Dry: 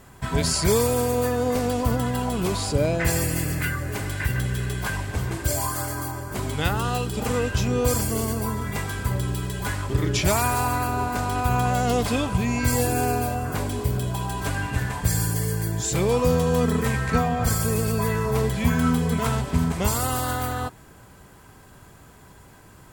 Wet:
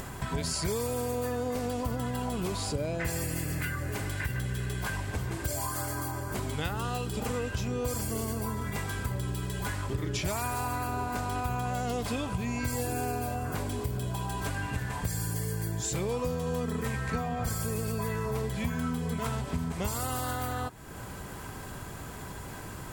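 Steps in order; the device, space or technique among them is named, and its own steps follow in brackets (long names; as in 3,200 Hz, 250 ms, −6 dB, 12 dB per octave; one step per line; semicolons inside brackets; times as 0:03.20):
upward and downward compression (upward compression, threshold −24 dBFS; downward compressor 4 to 1, threshold −24 dBFS, peak gain reduction 8.5 dB)
level −4.5 dB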